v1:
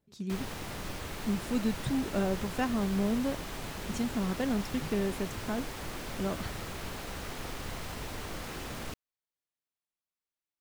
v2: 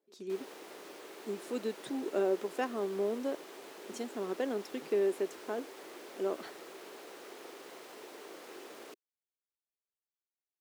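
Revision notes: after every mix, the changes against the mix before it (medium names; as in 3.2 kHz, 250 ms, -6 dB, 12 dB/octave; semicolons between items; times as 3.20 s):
speech +6.5 dB; master: add ladder high-pass 330 Hz, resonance 55%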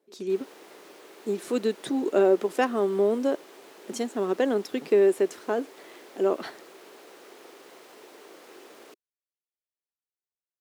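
speech +10.0 dB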